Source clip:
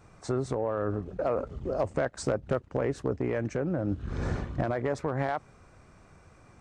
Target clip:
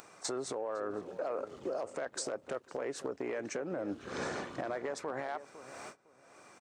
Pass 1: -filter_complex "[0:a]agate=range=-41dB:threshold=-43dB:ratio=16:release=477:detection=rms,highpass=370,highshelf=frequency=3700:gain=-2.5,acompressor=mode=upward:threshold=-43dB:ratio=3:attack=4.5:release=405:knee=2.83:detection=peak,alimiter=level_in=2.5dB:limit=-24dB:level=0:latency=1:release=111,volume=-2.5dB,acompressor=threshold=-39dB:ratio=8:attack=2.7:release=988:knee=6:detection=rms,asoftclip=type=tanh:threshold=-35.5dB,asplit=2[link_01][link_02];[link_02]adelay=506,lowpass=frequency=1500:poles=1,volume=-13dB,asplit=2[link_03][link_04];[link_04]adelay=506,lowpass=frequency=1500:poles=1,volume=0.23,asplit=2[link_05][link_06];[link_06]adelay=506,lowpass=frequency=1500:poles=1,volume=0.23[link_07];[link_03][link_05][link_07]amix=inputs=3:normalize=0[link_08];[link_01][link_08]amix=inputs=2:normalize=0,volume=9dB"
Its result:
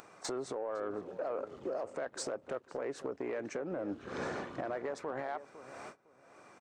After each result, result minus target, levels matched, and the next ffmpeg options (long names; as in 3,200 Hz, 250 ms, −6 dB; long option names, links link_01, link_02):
soft clipping: distortion +12 dB; 8,000 Hz band −3.5 dB
-filter_complex "[0:a]agate=range=-41dB:threshold=-43dB:ratio=16:release=477:detection=rms,highpass=370,highshelf=frequency=3700:gain=-2.5,acompressor=mode=upward:threshold=-43dB:ratio=3:attack=4.5:release=405:knee=2.83:detection=peak,alimiter=level_in=2.5dB:limit=-24dB:level=0:latency=1:release=111,volume=-2.5dB,acompressor=threshold=-39dB:ratio=8:attack=2.7:release=988:knee=6:detection=rms,asoftclip=type=tanh:threshold=-29dB,asplit=2[link_01][link_02];[link_02]adelay=506,lowpass=frequency=1500:poles=1,volume=-13dB,asplit=2[link_03][link_04];[link_04]adelay=506,lowpass=frequency=1500:poles=1,volume=0.23,asplit=2[link_05][link_06];[link_06]adelay=506,lowpass=frequency=1500:poles=1,volume=0.23[link_07];[link_03][link_05][link_07]amix=inputs=3:normalize=0[link_08];[link_01][link_08]amix=inputs=2:normalize=0,volume=9dB"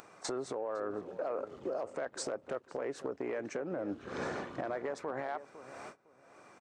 8,000 Hz band −4.0 dB
-filter_complex "[0:a]agate=range=-41dB:threshold=-43dB:ratio=16:release=477:detection=rms,highpass=370,highshelf=frequency=3700:gain=7,acompressor=mode=upward:threshold=-43dB:ratio=3:attack=4.5:release=405:knee=2.83:detection=peak,alimiter=level_in=2.5dB:limit=-24dB:level=0:latency=1:release=111,volume=-2.5dB,acompressor=threshold=-39dB:ratio=8:attack=2.7:release=988:knee=6:detection=rms,asoftclip=type=tanh:threshold=-29dB,asplit=2[link_01][link_02];[link_02]adelay=506,lowpass=frequency=1500:poles=1,volume=-13dB,asplit=2[link_03][link_04];[link_04]adelay=506,lowpass=frequency=1500:poles=1,volume=0.23,asplit=2[link_05][link_06];[link_06]adelay=506,lowpass=frequency=1500:poles=1,volume=0.23[link_07];[link_03][link_05][link_07]amix=inputs=3:normalize=0[link_08];[link_01][link_08]amix=inputs=2:normalize=0,volume=9dB"